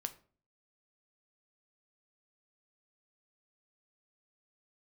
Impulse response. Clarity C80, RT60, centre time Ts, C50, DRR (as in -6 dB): 20.5 dB, 0.45 s, 5 ms, 16.0 dB, 8.5 dB